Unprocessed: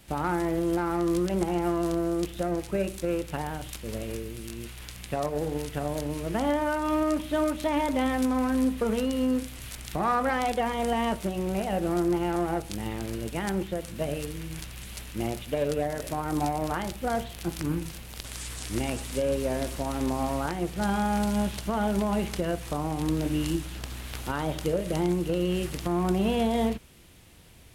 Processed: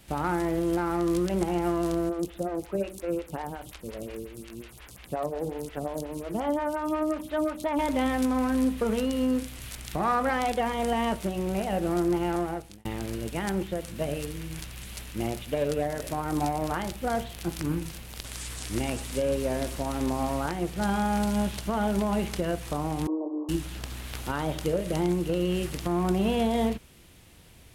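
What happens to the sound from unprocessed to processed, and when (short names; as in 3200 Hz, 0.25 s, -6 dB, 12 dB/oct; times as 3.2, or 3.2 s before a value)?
2.09–7.79 photocell phaser 5.6 Hz
12.34–12.85 fade out
23.07–23.49 Chebyshev band-pass 310–1100 Hz, order 5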